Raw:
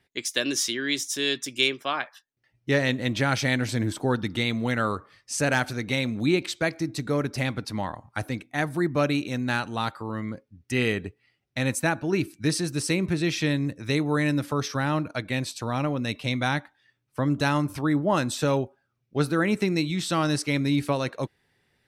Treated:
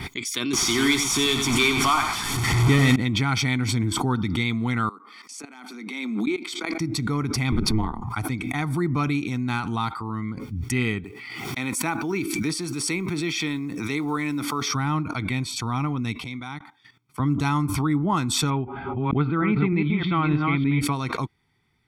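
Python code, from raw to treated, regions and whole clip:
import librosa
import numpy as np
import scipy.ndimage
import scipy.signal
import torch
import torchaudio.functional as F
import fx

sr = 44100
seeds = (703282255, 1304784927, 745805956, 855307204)

y = fx.chain(x, sr, fx.delta_mod(bps=64000, step_db=-28.0),
    fx.leveller(passes=2),
    fx.echo_single(ms=94, db=-8.0), at=(0.53, 2.96))
y = fx.chain(y, sr, fx.steep_highpass(hz=210.0, slope=72),
    fx.level_steps(step_db=22), at=(4.89, 6.8))
y = fx.chain(y, sr, fx.low_shelf(hz=500.0, db=10.5),
    fx.ring_mod(carrier_hz=110.0),
    fx.band_squash(depth_pct=40), at=(7.52, 8.04))
y = fx.chain(y, sr, fx.block_float(bits=7),
    fx.highpass(hz=260.0, slope=12),
    fx.sustainer(db_per_s=74.0), at=(11.04, 14.69))
y = fx.chain(y, sr, fx.highpass(hz=150.0, slope=12),
    fx.level_steps(step_db=16),
    fx.upward_expand(threshold_db=-44.0, expansion=2.5), at=(16.24, 17.2))
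y = fx.chain(y, sr, fx.reverse_delay(ms=306, wet_db=-4.5),
    fx.steep_lowpass(hz=3200.0, slope=36), at=(18.5, 20.81))
y = fx.high_shelf(y, sr, hz=4200.0, db=-5.5)
y = y + 0.87 * np.pad(y, (int(0.9 * sr / 1000.0), 0))[:len(y)]
y = fx.pre_swell(y, sr, db_per_s=31.0)
y = F.gain(torch.from_numpy(y), -2.0).numpy()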